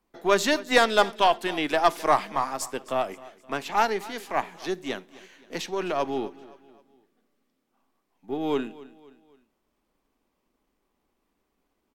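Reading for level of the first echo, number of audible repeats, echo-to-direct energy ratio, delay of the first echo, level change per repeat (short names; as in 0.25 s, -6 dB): -19.5 dB, 3, -18.5 dB, 0.261 s, -7.0 dB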